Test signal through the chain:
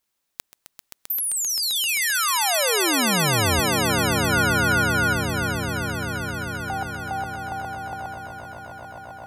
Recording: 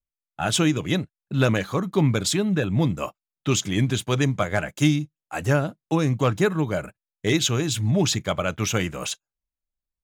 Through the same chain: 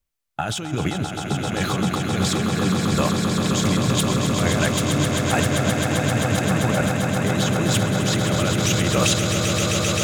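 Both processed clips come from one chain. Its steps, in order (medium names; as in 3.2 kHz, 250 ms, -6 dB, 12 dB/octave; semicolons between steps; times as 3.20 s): compressor with a negative ratio -30 dBFS, ratio -1; echo with a slow build-up 131 ms, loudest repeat 8, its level -7 dB; trim +4 dB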